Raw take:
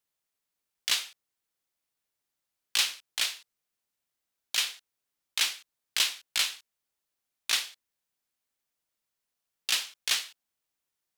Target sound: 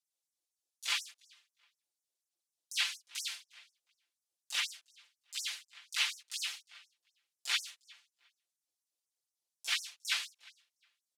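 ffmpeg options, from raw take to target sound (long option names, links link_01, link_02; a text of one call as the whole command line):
ffmpeg -i in.wav -filter_complex "[0:a]asplit=4[link_01][link_02][link_03][link_04];[link_02]asetrate=37084,aresample=44100,atempo=1.18921,volume=-3dB[link_05];[link_03]asetrate=52444,aresample=44100,atempo=0.840896,volume=-3dB[link_06];[link_04]asetrate=88200,aresample=44100,atempo=0.5,volume=-4dB[link_07];[link_01][link_05][link_06][link_07]amix=inputs=4:normalize=0,lowpass=11000,acrossover=split=3600[link_08][link_09];[link_09]acompressor=threshold=-34dB:ratio=4:attack=1:release=60[link_10];[link_08][link_10]amix=inputs=2:normalize=0,aecho=1:1:5.8:0.86,acrossover=split=140|810|3100[link_11][link_12][link_13][link_14];[link_12]acompressor=threshold=-58dB:ratio=6[link_15];[link_13]agate=range=-33dB:threshold=-47dB:ratio=3:detection=peak[link_16];[link_14]aphaser=in_gain=1:out_gain=1:delay=4.9:decay=0.41:speed=0.86:type=sinusoidal[link_17];[link_11][link_15][link_16][link_17]amix=inputs=4:normalize=0,asplit=2[link_18][link_19];[link_19]adelay=356,lowpass=frequency=4400:poles=1,volume=-21.5dB,asplit=2[link_20][link_21];[link_21]adelay=356,lowpass=frequency=4400:poles=1,volume=0.22[link_22];[link_18][link_20][link_22]amix=inputs=3:normalize=0,afftfilt=real='re*gte(b*sr/1024,250*pow(5500/250,0.5+0.5*sin(2*PI*4.1*pts/sr)))':imag='im*gte(b*sr/1024,250*pow(5500/250,0.5+0.5*sin(2*PI*4.1*pts/sr)))':win_size=1024:overlap=0.75,volume=-7.5dB" out.wav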